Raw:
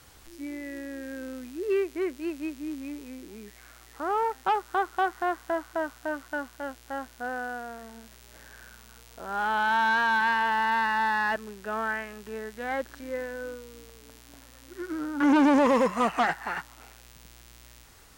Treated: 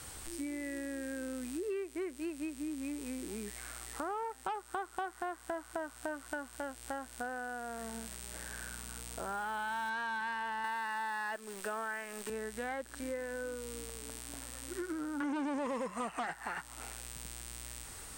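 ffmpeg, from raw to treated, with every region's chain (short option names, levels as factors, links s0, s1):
-filter_complex "[0:a]asettb=1/sr,asplit=3[s0][s1][s2];[s0]atrim=end=7.774[s3];[s1]atrim=start=7.77:end=9.9,asetpts=PTS-STARTPTS,afade=t=in:d=0.004:c=qsin,afade=t=out:st=2.126:d=0.004:c=qsin,acrusher=bits=6:mode=log:mix=0:aa=0.000001,aeval=exprs='val(0)+0.00158*(sin(2*PI*60*n/s)+sin(2*PI*2*60*n/s)/2+sin(2*PI*3*60*n/s)/3+sin(2*PI*4*60*n/s)/4+sin(2*PI*5*60*n/s)/5)':c=same[s4];[s2]atrim=start=9.896[s5];[s3][s4]acrossfade=d=0.004:c1=hsin:c2=qsin[s6];[s6][s5]acrossfade=d=0.004:c1=qsin:c2=hsin,asettb=1/sr,asplit=3[s7][s8][s9];[s7]atrim=end=10.644[s10];[s8]atrim=start=10.64:end=12.3,asetpts=PTS-STARTPTS,afade=t=in:d=0.004:c=qsin,afade=t=out:st=1.656:d=0.004:c=qsin,highpass=260,acontrast=31,acrusher=bits=8:dc=4:mix=0:aa=0.000001[s11];[s9]atrim=start=12.296[s12];[s10][s11]acrossfade=d=0.004:c1=hsin:c2=qsin[s13];[s13][s12]acrossfade=d=0.004:c1=qsin:c2=hsin,equalizer=f=8500:t=o:w=0.23:g=14.5,acompressor=threshold=0.00891:ratio=6,volume=1.58"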